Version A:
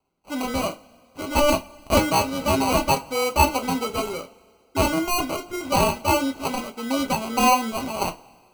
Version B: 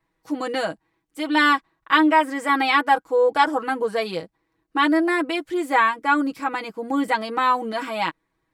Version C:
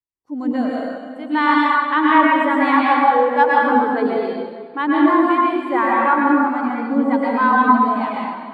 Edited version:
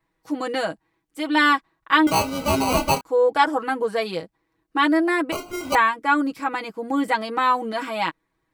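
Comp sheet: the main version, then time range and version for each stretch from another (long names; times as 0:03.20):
B
0:02.07–0:03.01: punch in from A
0:05.32–0:05.75: punch in from A
not used: C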